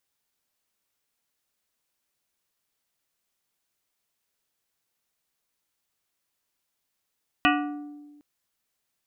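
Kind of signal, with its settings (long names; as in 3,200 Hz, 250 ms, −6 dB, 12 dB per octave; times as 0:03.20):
struck glass plate, length 0.76 s, lowest mode 293 Hz, modes 8, decay 1.51 s, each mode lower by 0.5 dB, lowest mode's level −21 dB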